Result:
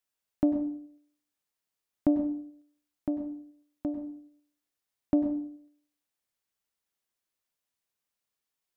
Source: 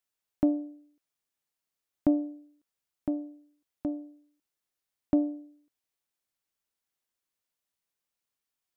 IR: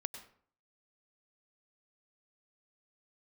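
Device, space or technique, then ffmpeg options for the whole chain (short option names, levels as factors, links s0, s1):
bathroom: -filter_complex "[1:a]atrim=start_sample=2205[s0];[0:a][s0]afir=irnorm=-1:irlink=0,volume=1.19"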